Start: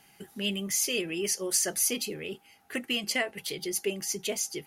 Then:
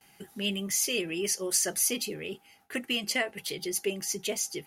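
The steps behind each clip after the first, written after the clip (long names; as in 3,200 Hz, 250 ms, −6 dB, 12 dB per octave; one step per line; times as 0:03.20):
noise gate with hold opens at −50 dBFS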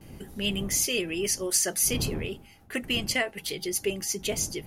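wind on the microphone 200 Hz −42 dBFS
level +2 dB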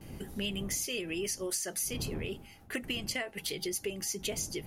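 downward compressor, threshold −32 dBFS, peak gain reduction 11.5 dB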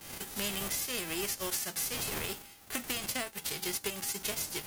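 spectral envelope flattened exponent 0.3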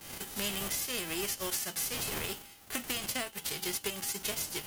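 on a send at −10.5 dB: four-pole ladder band-pass 3,100 Hz, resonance 90% + convolution reverb RT60 0.35 s, pre-delay 3 ms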